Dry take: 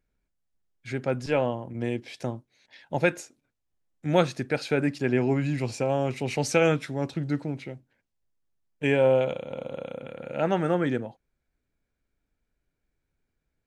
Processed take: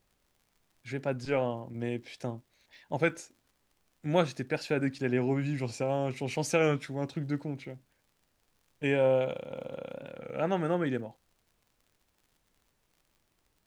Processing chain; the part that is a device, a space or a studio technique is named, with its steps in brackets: warped LP (warped record 33 1/3 rpm, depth 100 cents; crackle 68 per s -49 dBFS; pink noise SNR 42 dB); trim -4.5 dB

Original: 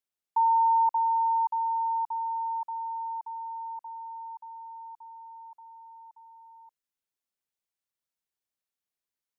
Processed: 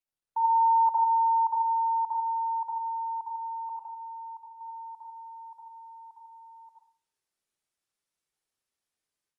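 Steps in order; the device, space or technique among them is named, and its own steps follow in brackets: 3.69–4.61 s: expander -38 dBFS; speakerphone in a meeting room (reverberation RT60 0.50 s, pre-delay 57 ms, DRR 0.5 dB; level rider gain up to 11 dB; trim -8.5 dB; Opus 32 kbps 48 kHz)

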